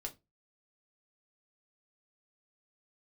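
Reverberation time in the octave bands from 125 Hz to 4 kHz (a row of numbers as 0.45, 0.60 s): 0.35, 0.30, 0.25, 0.20, 0.20, 0.20 s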